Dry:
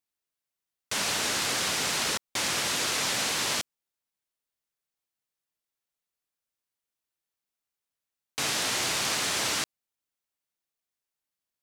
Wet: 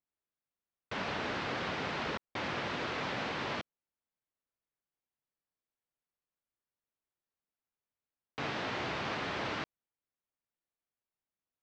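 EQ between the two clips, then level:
high-frequency loss of the air 150 metres
head-to-tape spacing loss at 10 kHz 26 dB
0.0 dB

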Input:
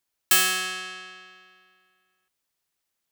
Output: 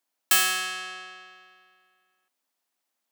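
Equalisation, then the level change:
dynamic equaliser 500 Hz, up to −5 dB, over −41 dBFS, Q 0.79
Chebyshev high-pass with heavy ripple 190 Hz, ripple 6 dB
+4.5 dB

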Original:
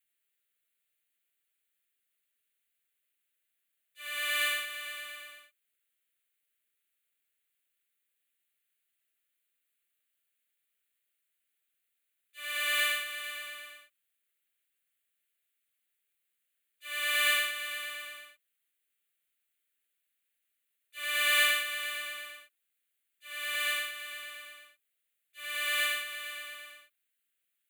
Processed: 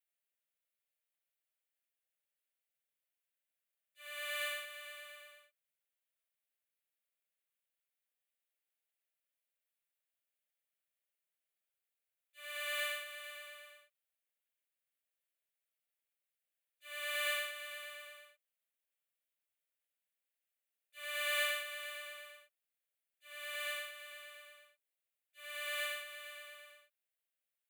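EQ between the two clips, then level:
four-pole ladder high-pass 490 Hz, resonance 55%
0.0 dB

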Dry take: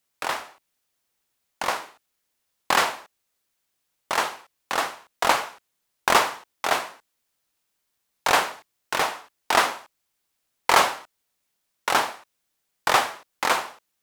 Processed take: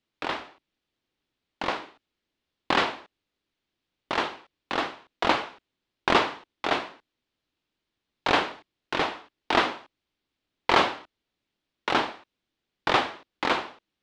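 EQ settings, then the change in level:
low-pass with resonance 3,600 Hz, resonance Q 1.6
low-shelf EQ 180 Hz +11 dB
parametric band 310 Hz +9.5 dB 1.1 octaves
−5.5 dB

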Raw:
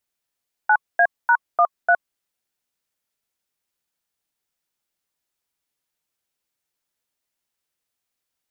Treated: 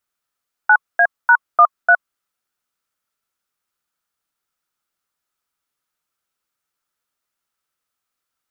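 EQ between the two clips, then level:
parametric band 1,300 Hz +11 dB 0.48 octaves
0.0 dB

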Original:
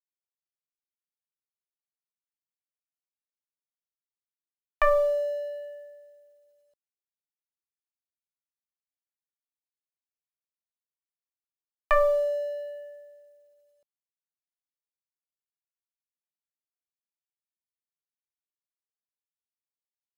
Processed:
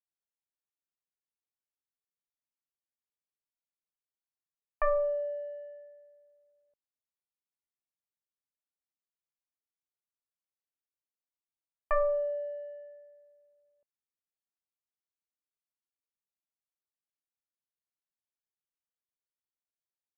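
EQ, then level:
moving average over 12 samples
high-frequency loss of the air 200 metres
−4.5 dB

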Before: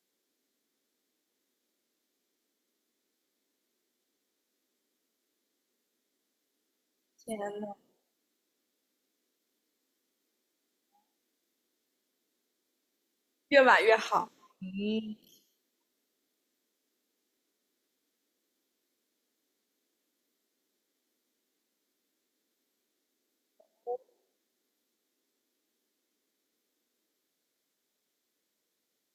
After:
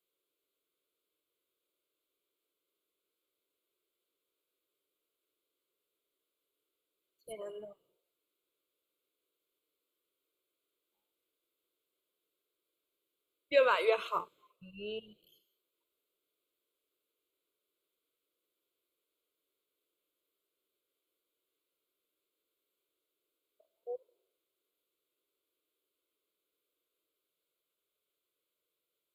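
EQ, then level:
phaser with its sweep stopped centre 1,200 Hz, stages 8
−3.0 dB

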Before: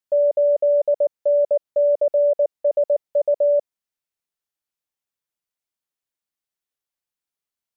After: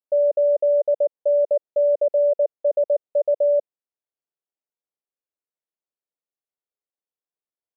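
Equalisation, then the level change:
resonant band-pass 480 Hz, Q 1.3
0.0 dB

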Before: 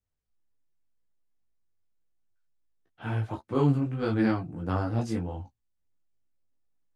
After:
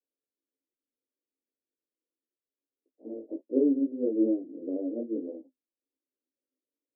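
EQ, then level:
Chebyshev band-pass filter 250–590 Hz, order 4
spectral tilt −2 dB per octave
0.0 dB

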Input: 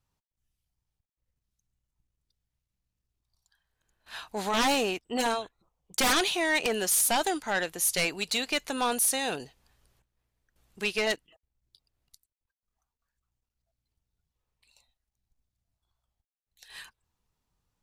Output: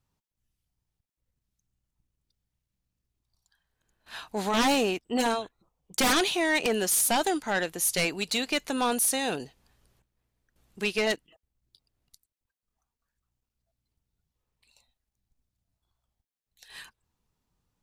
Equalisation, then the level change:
parametric band 230 Hz +4.5 dB 2 octaves
0.0 dB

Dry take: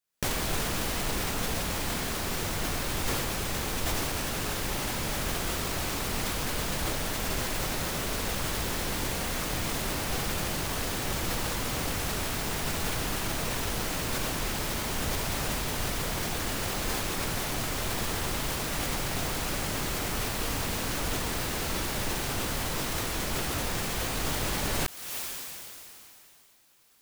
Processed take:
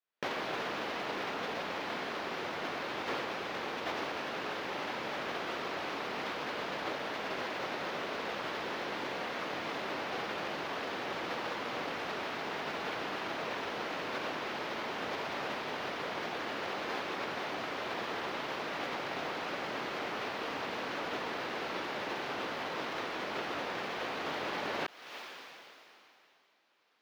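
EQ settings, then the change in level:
high-pass filter 360 Hz 12 dB per octave
high-frequency loss of the air 280 metres
0.0 dB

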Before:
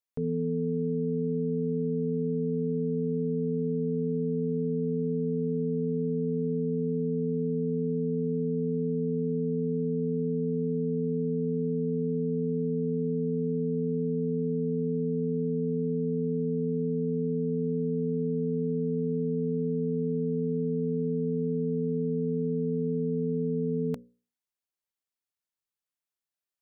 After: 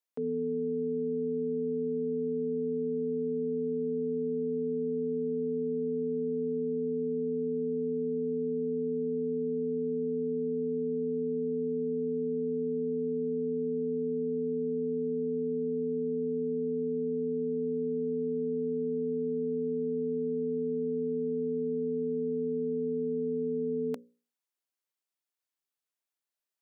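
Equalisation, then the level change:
high-pass filter 240 Hz 24 dB per octave
0.0 dB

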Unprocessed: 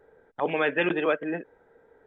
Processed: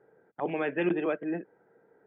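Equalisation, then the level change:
dynamic equaliser 1,400 Hz, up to −5 dB, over −42 dBFS, Q 2.5
loudspeaker in its box 120–2,900 Hz, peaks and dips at 130 Hz +9 dB, 190 Hz +9 dB, 340 Hz +8 dB, 710 Hz +4 dB, 1,400 Hz +3 dB
−7.0 dB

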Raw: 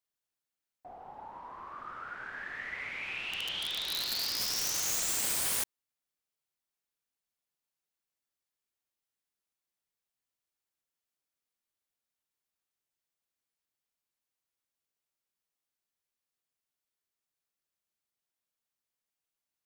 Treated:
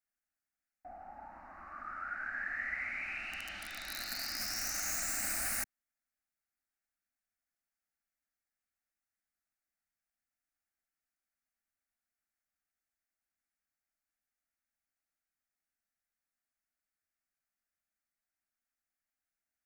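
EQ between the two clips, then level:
parametric band 430 Hz −13 dB 1.3 octaves
high-shelf EQ 4,200 Hz −11 dB
phaser with its sweep stopped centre 670 Hz, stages 8
+6.0 dB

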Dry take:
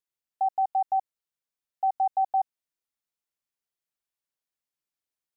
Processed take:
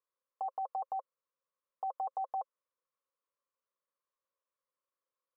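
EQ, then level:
pair of resonant band-passes 760 Hz, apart 0.99 octaves
+12.0 dB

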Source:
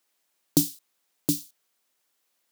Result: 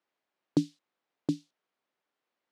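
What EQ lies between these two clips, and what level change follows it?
head-to-tape spacing loss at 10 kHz 33 dB
low-shelf EQ 120 Hz −8.5 dB
0.0 dB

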